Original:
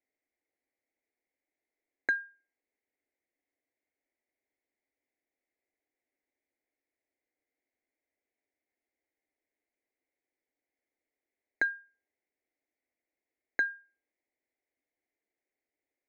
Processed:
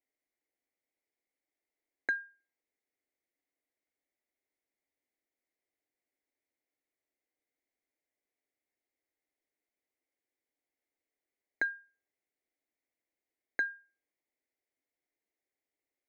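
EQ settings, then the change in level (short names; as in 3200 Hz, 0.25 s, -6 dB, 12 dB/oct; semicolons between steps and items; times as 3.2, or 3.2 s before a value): notches 60/120 Hz; -3.0 dB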